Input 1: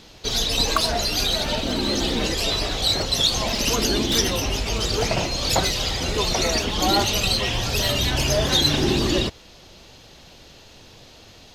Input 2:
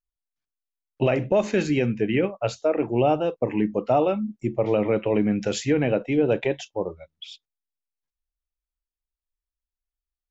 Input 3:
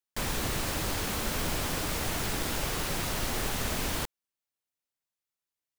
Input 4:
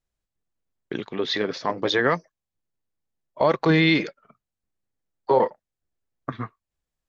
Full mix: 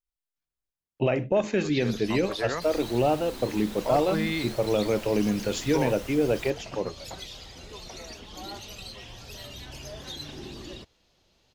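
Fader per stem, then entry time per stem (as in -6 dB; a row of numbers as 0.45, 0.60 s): -20.0, -3.0, -12.0, -11.0 dB; 1.55, 0.00, 2.45, 0.45 s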